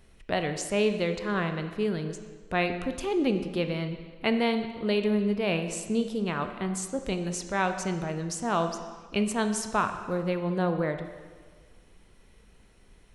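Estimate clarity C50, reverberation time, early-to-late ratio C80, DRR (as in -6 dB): 8.5 dB, 1.6 s, 10.0 dB, 7.5 dB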